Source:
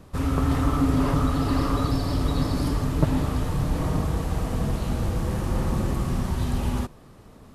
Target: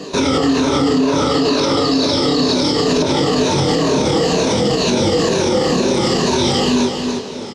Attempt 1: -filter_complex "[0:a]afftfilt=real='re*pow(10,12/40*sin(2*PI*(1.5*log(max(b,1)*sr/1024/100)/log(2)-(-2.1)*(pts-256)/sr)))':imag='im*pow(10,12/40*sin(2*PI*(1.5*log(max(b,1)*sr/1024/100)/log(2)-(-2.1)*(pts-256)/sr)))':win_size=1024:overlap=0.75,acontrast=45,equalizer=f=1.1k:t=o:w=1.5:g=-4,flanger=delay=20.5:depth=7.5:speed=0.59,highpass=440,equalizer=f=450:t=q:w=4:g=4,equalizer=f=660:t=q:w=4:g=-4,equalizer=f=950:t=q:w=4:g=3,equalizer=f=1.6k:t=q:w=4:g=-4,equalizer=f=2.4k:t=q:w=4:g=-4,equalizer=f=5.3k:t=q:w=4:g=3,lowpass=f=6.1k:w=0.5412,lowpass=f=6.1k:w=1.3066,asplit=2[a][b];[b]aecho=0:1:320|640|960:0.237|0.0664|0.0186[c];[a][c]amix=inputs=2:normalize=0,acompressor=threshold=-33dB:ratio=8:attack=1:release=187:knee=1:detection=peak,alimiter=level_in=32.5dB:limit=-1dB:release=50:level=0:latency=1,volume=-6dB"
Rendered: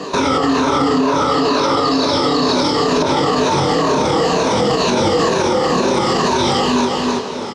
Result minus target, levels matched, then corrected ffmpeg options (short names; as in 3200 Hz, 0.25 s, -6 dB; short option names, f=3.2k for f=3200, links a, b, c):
1000 Hz band +5.5 dB
-filter_complex "[0:a]afftfilt=real='re*pow(10,12/40*sin(2*PI*(1.5*log(max(b,1)*sr/1024/100)/log(2)-(-2.1)*(pts-256)/sr)))':imag='im*pow(10,12/40*sin(2*PI*(1.5*log(max(b,1)*sr/1024/100)/log(2)-(-2.1)*(pts-256)/sr)))':win_size=1024:overlap=0.75,acontrast=45,equalizer=f=1.1k:t=o:w=1.5:g=-14.5,flanger=delay=20.5:depth=7.5:speed=0.59,highpass=440,equalizer=f=450:t=q:w=4:g=4,equalizer=f=660:t=q:w=4:g=-4,equalizer=f=950:t=q:w=4:g=3,equalizer=f=1.6k:t=q:w=4:g=-4,equalizer=f=2.4k:t=q:w=4:g=-4,equalizer=f=5.3k:t=q:w=4:g=3,lowpass=f=6.1k:w=0.5412,lowpass=f=6.1k:w=1.3066,asplit=2[a][b];[b]aecho=0:1:320|640|960:0.237|0.0664|0.0186[c];[a][c]amix=inputs=2:normalize=0,acompressor=threshold=-33dB:ratio=8:attack=1:release=187:knee=1:detection=peak,alimiter=level_in=32.5dB:limit=-1dB:release=50:level=0:latency=1,volume=-6dB"